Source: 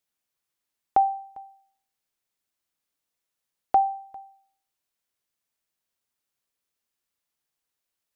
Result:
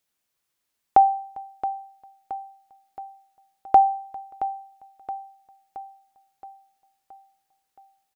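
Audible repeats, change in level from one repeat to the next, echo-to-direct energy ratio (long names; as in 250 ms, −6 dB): 5, −5.0 dB, −11.5 dB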